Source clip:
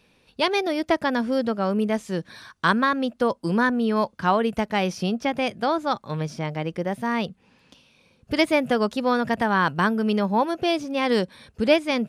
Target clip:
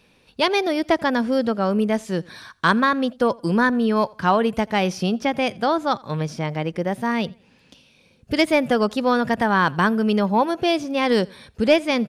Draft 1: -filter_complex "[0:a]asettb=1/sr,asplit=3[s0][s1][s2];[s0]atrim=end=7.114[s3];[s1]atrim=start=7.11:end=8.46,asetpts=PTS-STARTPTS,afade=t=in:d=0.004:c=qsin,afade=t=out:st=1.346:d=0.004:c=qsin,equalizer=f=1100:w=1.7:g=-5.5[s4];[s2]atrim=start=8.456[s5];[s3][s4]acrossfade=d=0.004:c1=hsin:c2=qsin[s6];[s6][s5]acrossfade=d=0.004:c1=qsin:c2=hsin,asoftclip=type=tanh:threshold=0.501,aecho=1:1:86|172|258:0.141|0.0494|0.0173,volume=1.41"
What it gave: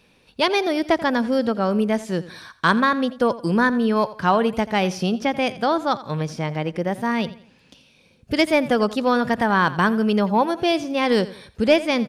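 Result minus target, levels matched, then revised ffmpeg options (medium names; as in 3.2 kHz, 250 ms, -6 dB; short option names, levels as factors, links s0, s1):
echo-to-direct +9 dB
-filter_complex "[0:a]asettb=1/sr,asplit=3[s0][s1][s2];[s0]atrim=end=7.114[s3];[s1]atrim=start=7.11:end=8.46,asetpts=PTS-STARTPTS,afade=t=in:d=0.004:c=qsin,afade=t=out:st=1.346:d=0.004:c=qsin,equalizer=f=1100:w=1.7:g=-5.5[s4];[s2]atrim=start=8.456[s5];[s3][s4]acrossfade=d=0.004:c1=hsin:c2=qsin[s6];[s6][s5]acrossfade=d=0.004:c1=qsin:c2=hsin,asoftclip=type=tanh:threshold=0.501,aecho=1:1:86|172:0.0501|0.0175,volume=1.41"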